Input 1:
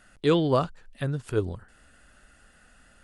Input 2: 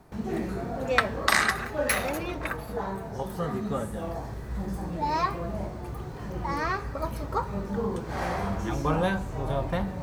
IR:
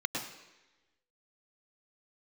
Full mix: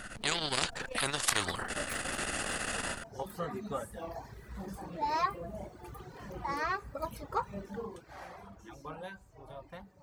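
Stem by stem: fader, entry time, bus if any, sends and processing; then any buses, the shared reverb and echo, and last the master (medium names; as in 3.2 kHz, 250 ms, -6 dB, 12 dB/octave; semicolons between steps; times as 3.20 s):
-2.5 dB, 0.00 s, no send, level rider gain up to 13.5 dB; spectrum-flattening compressor 10:1
2.83 s -11 dB -> 3.21 s -2.5 dB -> 7.59 s -2.5 dB -> 8.28 s -14.5 dB, 0.00 s, no send, reverb removal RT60 1.3 s; bass shelf 300 Hz -8 dB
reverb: none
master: transformer saturation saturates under 2 kHz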